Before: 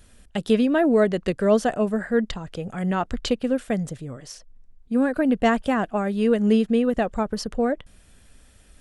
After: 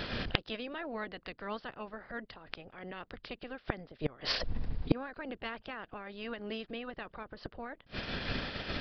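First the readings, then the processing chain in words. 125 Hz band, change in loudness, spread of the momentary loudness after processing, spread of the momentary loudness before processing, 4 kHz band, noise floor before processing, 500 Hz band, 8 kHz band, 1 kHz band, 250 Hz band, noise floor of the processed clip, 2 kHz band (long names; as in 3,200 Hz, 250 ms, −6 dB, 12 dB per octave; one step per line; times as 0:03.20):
−10.0 dB, −16.5 dB, 11 LU, 13 LU, −2.5 dB, −54 dBFS, −19.5 dB, −21.0 dB, −14.5 dB, −19.5 dB, −66 dBFS, −8.5 dB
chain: ceiling on every frequency bin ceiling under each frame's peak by 20 dB
in parallel at −2.5 dB: downward compressor 12 to 1, threshold −33 dBFS, peak gain reduction 20 dB
on the sum: downsampling to 11,025 Hz
gate with flip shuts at −22 dBFS, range −31 dB
level +9.5 dB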